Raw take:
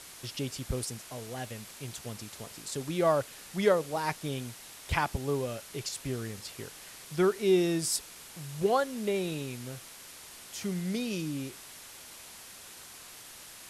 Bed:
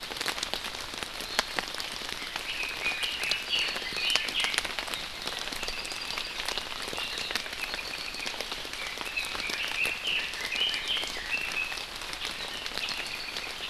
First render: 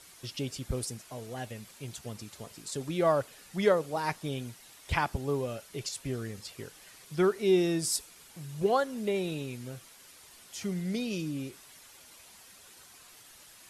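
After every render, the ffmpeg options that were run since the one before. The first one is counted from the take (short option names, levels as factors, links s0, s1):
-af "afftdn=nr=8:nf=-49"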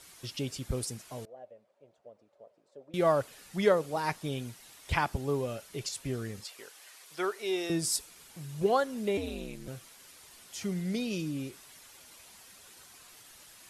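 -filter_complex "[0:a]asettb=1/sr,asplit=3[s0][s1][s2];[s0]atrim=end=1.254[s3];[s1]atrim=start=1.25:end=2.94,asetpts=PTS-STARTPTS,afade=t=in:d=0.004:c=qsin,afade=t=out:st=1.686:d=0.004:c=qsin,bandpass=f=580:t=q:w=6.2[s4];[s2]atrim=start=2.936[s5];[s3][s4]acrossfade=d=0.004:c1=hsin:c2=qsin[s6];[s6][s5]acrossfade=d=0.004:c1=qsin:c2=hsin,asettb=1/sr,asplit=3[s7][s8][s9];[s7]atrim=end=6.444[s10];[s8]atrim=start=6.44:end=7.7,asetpts=PTS-STARTPTS,afade=t=in:d=0.004:c=qsin,afade=t=out:st=1.256:d=0.004:c=qsin,highpass=570[s11];[s9]atrim=start=7.696[s12];[s10][s11]acrossfade=d=0.004:c1=hsin:c2=qsin[s13];[s13][s12]acrossfade=d=0.004:c1=qsin:c2=hsin,asettb=1/sr,asplit=3[s14][s15][s16];[s14]atrim=end=9.174[s17];[s15]atrim=start=9.17:end=9.68,asetpts=PTS-STARTPTS,afade=t=in:d=0.004:c=qsin,afade=t=out:st=0.506:d=0.004:c=qsin,aeval=exprs='val(0)*sin(2*PI*99*n/s)':c=same[s18];[s16]atrim=start=9.676[s19];[s17][s18]acrossfade=d=0.004:c1=hsin:c2=qsin[s20];[s20][s19]acrossfade=d=0.004:c1=qsin:c2=hsin"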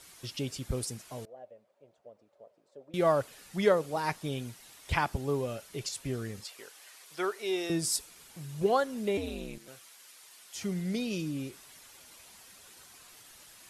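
-filter_complex "[0:a]asettb=1/sr,asplit=3[s0][s1][s2];[s0]atrim=end=9.584[s3];[s1]atrim=start=9.58:end=10.55,asetpts=PTS-STARTPTS,afade=t=in:d=0.004:c=qsin,afade=t=out:st=0.966:d=0.004:c=qsin,highpass=f=900:p=1[s4];[s2]atrim=start=10.546[s5];[s3][s4]acrossfade=d=0.004:c1=hsin:c2=qsin[s6];[s6][s5]acrossfade=d=0.004:c1=qsin:c2=hsin"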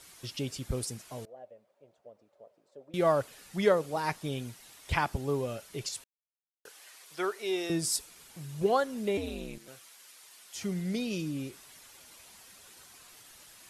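-filter_complex "[0:a]asplit=3[s0][s1][s2];[s0]atrim=end=6.04,asetpts=PTS-STARTPTS,afade=t=out:st=6.036:d=0.004:c=hsin[s3];[s1]atrim=start=6.04:end=6.65,asetpts=PTS-STARTPTS,volume=0[s4];[s2]atrim=start=6.65,asetpts=PTS-STARTPTS,afade=t=in:d=0.004:c=hsin[s5];[s3][s4][s5]concat=n=3:v=0:a=1"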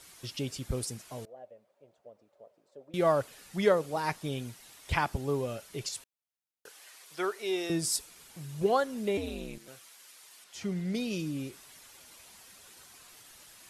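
-filter_complex "[0:a]asettb=1/sr,asplit=3[s0][s1][s2];[s0]atrim=end=10.444[s3];[s1]atrim=start=10.44:end=10.95,asetpts=PTS-STARTPTS,afade=t=in:d=0.004:c=qsin,afade=t=out:st=0.506:d=0.004:c=qsin,highshelf=f=7200:g=-11[s4];[s2]atrim=start=10.946[s5];[s3][s4]acrossfade=d=0.004:c1=hsin:c2=qsin[s6];[s6][s5]acrossfade=d=0.004:c1=qsin:c2=hsin"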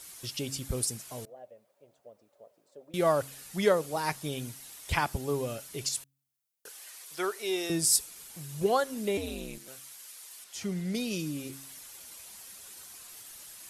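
-af "highshelf=f=6300:g=11,bandreject=f=136:t=h:w=4,bandreject=f=272:t=h:w=4"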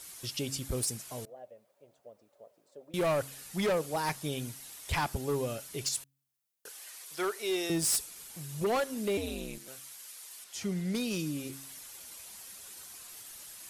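-af "asoftclip=type=hard:threshold=0.0531"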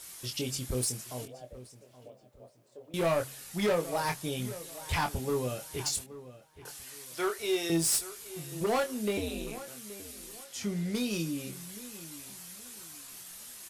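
-filter_complex "[0:a]asplit=2[s0][s1];[s1]adelay=24,volume=0.501[s2];[s0][s2]amix=inputs=2:normalize=0,asplit=2[s3][s4];[s4]adelay=824,lowpass=f=3000:p=1,volume=0.168,asplit=2[s5][s6];[s6]adelay=824,lowpass=f=3000:p=1,volume=0.32,asplit=2[s7][s8];[s8]adelay=824,lowpass=f=3000:p=1,volume=0.32[s9];[s3][s5][s7][s9]amix=inputs=4:normalize=0"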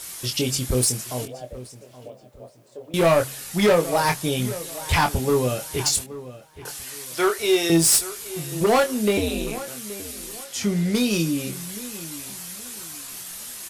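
-af "volume=3.35"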